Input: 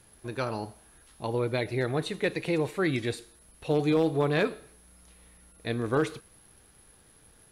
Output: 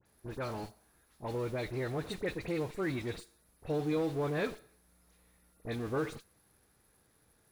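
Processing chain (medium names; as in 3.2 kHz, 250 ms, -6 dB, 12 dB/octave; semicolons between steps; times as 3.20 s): median filter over 3 samples; high-pass 54 Hz 6 dB/octave; peaking EQ 3 kHz -6.5 dB 0.36 oct; in parallel at -8 dB: Schmitt trigger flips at -37 dBFS; on the sum: phase dispersion highs, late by 58 ms, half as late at 2.4 kHz; trim -8.5 dB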